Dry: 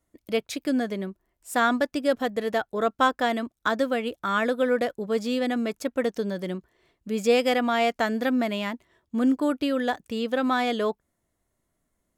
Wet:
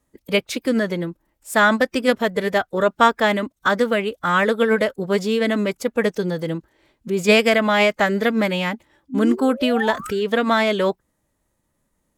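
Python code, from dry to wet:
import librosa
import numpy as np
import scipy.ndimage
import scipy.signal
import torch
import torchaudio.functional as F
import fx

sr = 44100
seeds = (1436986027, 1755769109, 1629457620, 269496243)

y = fx.spec_paint(x, sr, seeds[0], shape='rise', start_s=9.1, length_s=1.11, low_hz=270.0, high_hz=1800.0, level_db=-37.0)
y = fx.dynamic_eq(y, sr, hz=2200.0, q=1.3, threshold_db=-39.0, ratio=4.0, max_db=3)
y = fx.pitch_keep_formants(y, sr, semitones=-2.0)
y = y * 10.0 ** (6.0 / 20.0)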